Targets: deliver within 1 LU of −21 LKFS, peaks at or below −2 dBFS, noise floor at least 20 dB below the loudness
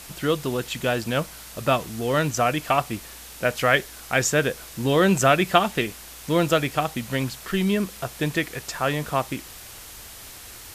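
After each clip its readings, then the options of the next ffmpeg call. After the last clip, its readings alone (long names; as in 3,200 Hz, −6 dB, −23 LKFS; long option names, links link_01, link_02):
background noise floor −42 dBFS; target noise floor −44 dBFS; integrated loudness −23.5 LKFS; sample peak −2.0 dBFS; target loudness −21.0 LKFS
→ -af "afftdn=noise_reduction=6:noise_floor=-42"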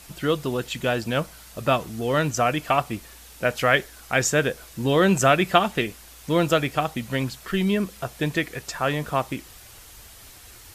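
background noise floor −47 dBFS; integrated loudness −23.5 LKFS; sample peak −2.0 dBFS; target loudness −21.0 LKFS
→ -af "volume=2.5dB,alimiter=limit=-2dB:level=0:latency=1"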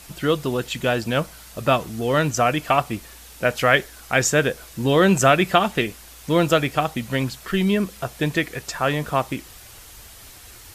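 integrated loudness −21.5 LKFS; sample peak −2.0 dBFS; background noise floor −44 dBFS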